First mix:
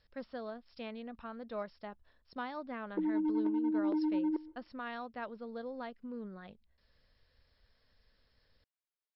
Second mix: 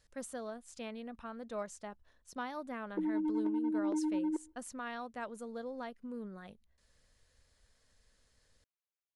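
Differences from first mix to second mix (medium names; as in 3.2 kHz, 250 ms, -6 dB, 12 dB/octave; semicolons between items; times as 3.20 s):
background: send -9.5 dB; master: remove brick-wall FIR low-pass 5.5 kHz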